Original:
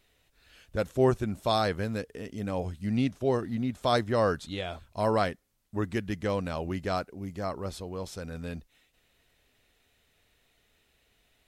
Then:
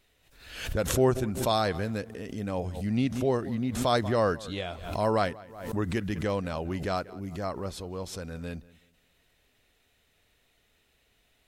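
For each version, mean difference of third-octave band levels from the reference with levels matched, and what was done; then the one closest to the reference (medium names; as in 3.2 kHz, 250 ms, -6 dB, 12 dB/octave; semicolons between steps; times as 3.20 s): 3.5 dB: on a send: filtered feedback delay 186 ms, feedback 30%, low-pass 3.2 kHz, level -20.5 dB; on the sum: swell ahead of each attack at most 73 dB/s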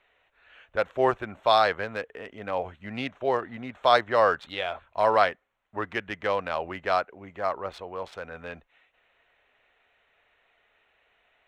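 7.0 dB: local Wiener filter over 9 samples; three-band isolator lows -20 dB, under 540 Hz, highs -16 dB, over 4 kHz; trim +9 dB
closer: first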